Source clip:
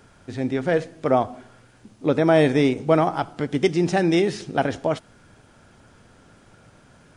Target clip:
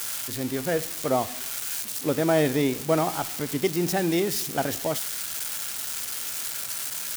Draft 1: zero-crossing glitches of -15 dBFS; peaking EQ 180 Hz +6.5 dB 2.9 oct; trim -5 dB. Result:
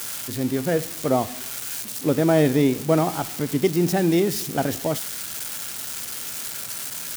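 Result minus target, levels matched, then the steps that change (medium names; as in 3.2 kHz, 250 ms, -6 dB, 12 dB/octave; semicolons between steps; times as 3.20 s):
250 Hz band +2.5 dB
remove: peaking EQ 180 Hz +6.5 dB 2.9 oct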